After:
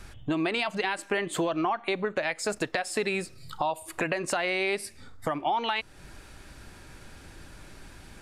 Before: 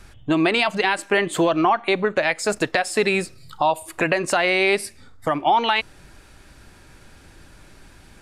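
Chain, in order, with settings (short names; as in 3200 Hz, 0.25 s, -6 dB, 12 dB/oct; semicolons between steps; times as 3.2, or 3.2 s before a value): compressor 2:1, threshold -32 dBFS, peak gain reduction 10 dB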